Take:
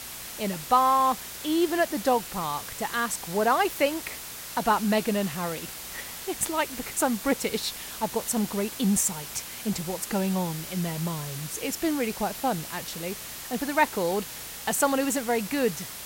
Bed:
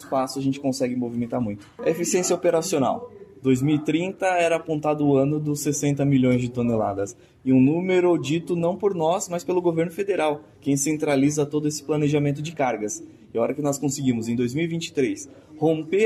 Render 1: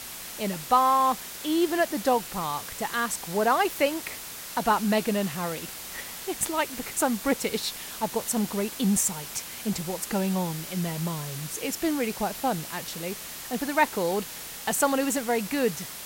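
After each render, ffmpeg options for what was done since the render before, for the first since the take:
-af "bandreject=f=60:t=h:w=4,bandreject=f=120:t=h:w=4"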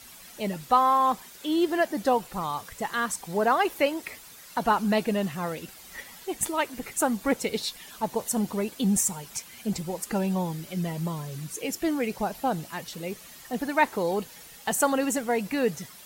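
-af "afftdn=nr=11:nf=-39"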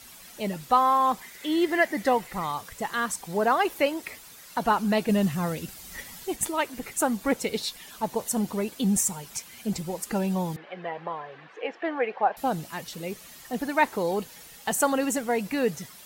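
-filter_complex "[0:a]asettb=1/sr,asplit=3[a][b][c];[a]atrim=end=1.214[d];[b]atrim=start=1.21:end=2.52,asetpts=PTS-STARTPTS,afade=t=in:d=0.004:c=qsin,afade=t=out:st=1.306:d=0.004:c=qsin,equalizer=f=2k:w=4.5:g=14.5[e];[c]atrim=start=2.516[f];[d][e]acrossfade=d=0.004:c1=hsin:c2=qsin[g];[g][f]acrossfade=d=0.004:c1=qsin:c2=hsin,asettb=1/sr,asplit=3[h][i][j];[h]atrim=end=5.094[k];[i]atrim=start=5.09:end=6.36,asetpts=PTS-STARTPTS,afade=t=in:d=0.004:c=qsin,afade=t=out:st=1.266:d=0.004:c=qsin,bass=f=250:g=8,treble=f=4k:g=4[l];[j]atrim=start=6.356[m];[k][l]acrossfade=d=0.004:c1=hsin:c2=qsin[n];[n][m]acrossfade=d=0.004:c1=qsin:c2=hsin,asettb=1/sr,asplit=3[o][p][q];[o]atrim=end=10.564[r];[p]atrim=start=10.56:end=12.37,asetpts=PTS-STARTPTS,afade=t=in:d=0.004:c=qsin,afade=t=out:st=1.806:d=0.004:c=qsin,highpass=460,equalizer=f=490:t=q:w=4:g=6,equalizer=f=770:t=q:w=4:g=9,equalizer=f=1.1k:t=q:w=4:g=5,equalizer=f=1.7k:t=q:w=4:g=8,lowpass=f=2.9k:w=0.5412,lowpass=f=2.9k:w=1.3066[s];[q]atrim=start=12.366[t];[r][s]acrossfade=d=0.004:c1=hsin:c2=qsin[u];[u][t]acrossfade=d=0.004:c1=qsin:c2=hsin"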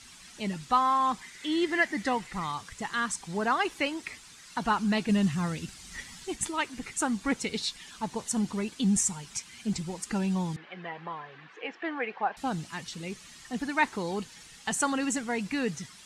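-af "lowpass=f=8.7k:w=0.5412,lowpass=f=8.7k:w=1.3066,equalizer=f=570:t=o:w=1.1:g=-10.5"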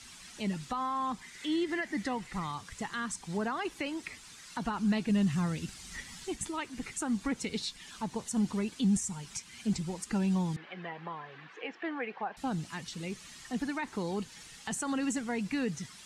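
-filter_complex "[0:a]alimiter=limit=-20.5dB:level=0:latency=1:release=58,acrossover=split=340[a][b];[b]acompressor=threshold=-43dB:ratio=1.5[c];[a][c]amix=inputs=2:normalize=0"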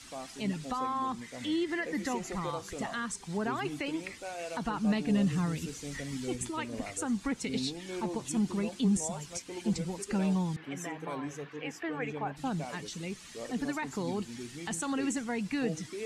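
-filter_complex "[1:a]volume=-19.5dB[a];[0:a][a]amix=inputs=2:normalize=0"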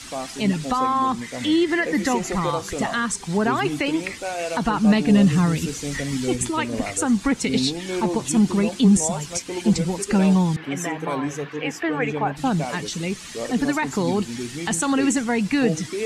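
-af "volume=12dB"

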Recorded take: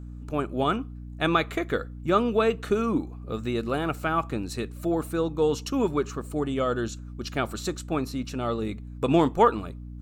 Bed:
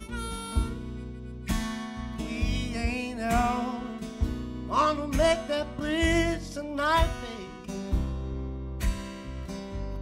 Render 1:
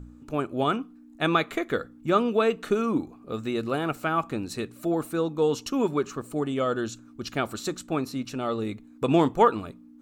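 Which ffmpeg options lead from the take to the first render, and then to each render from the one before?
-af "bandreject=f=60:t=h:w=4,bandreject=f=120:t=h:w=4,bandreject=f=180:t=h:w=4"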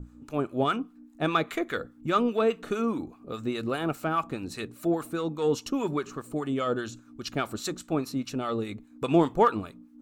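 -filter_complex "[0:a]asplit=2[a][b];[b]asoftclip=type=tanh:threshold=-22.5dB,volume=-11dB[c];[a][c]amix=inputs=2:normalize=0,acrossover=split=910[d][e];[d]aeval=exprs='val(0)*(1-0.7/2+0.7/2*cos(2*PI*4.9*n/s))':c=same[f];[e]aeval=exprs='val(0)*(1-0.7/2-0.7/2*cos(2*PI*4.9*n/s))':c=same[g];[f][g]amix=inputs=2:normalize=0"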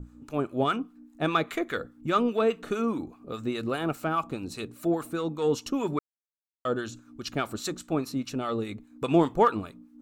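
-filter_complex "[0:a]asettb=1/sr,asplit=3[a][b][c];[a]atrim=end=4.154[d];[b]atrim=start=4.15:end=4.69,asetpts=PTS-STARTPTS,afade=t=in:d=0.004:c=qsin,afade=t=out:st=0.536:d=0.004:c=qsin,equalizer=f=1.8k:t=o:w=0.36:g=-8[e];[c]atrim=start=4.686[f];[d][e]acrossfade=d=0.004:c1=hsin:c2=qsin[g];[g][f]acrossfade=d=0.004:c1=qsin:c2=hsin,asplit=3[h][i][j];[h]atrim=end=5.99,asetpts=PTS-STARTPTS,afade=t=out:st=5.986:d=0.004:c=hsin[k];[i]atrim=start=5.99:end=6.65,asetpts=PTS-STARTPTS,volume=0[l];[j]atrim=start=6.65,asetpts=PTS-STARTPTS,afade=t=in:d=0.004:c=hsin[m];[k][l][m]concat=n=3:v=0:a=1"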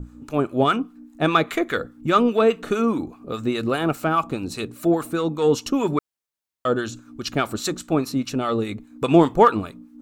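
-af "volume=7dB"

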